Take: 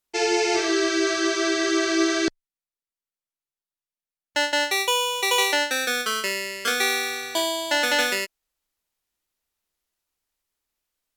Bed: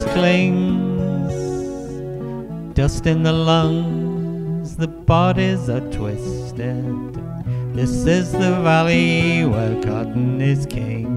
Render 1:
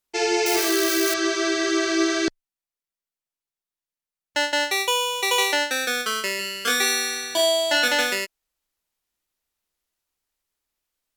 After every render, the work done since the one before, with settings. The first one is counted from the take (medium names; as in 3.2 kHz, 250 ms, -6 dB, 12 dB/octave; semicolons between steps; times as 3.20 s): 0.46–1.14 s: zero-crossing glitches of -17.5 dBFS; 6.37–7.88 s: flutter echo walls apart 3.4 m, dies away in 0.28 s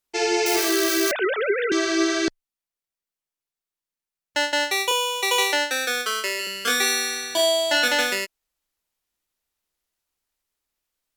1.11–1.72 s: formants replaced by sine waves; 4.91–6.47 s: steep high-pass 260 Hz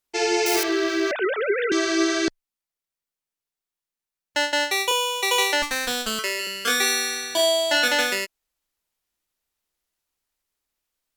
0.63–1.52 s: distance through air 170 m; 5.62–6.19 s: comb filter that takes the minimum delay 4.3 ms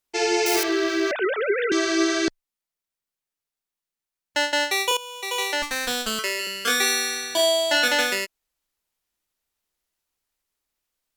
4.97–5.91 s: fade in, from -16 dB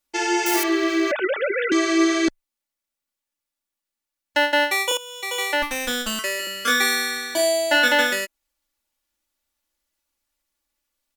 comb 3.5 ms, depth 81%; dynamic bell 4.7 kHz, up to -6 dB, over -37 dBFS, Q 1.8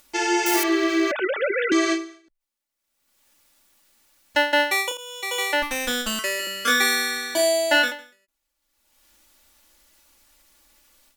upward compressor, threshold -41 dBFS; endings held to a fixed fall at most 130 dB/s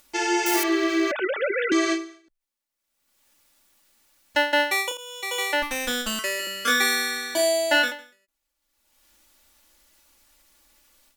trim -1.5 dB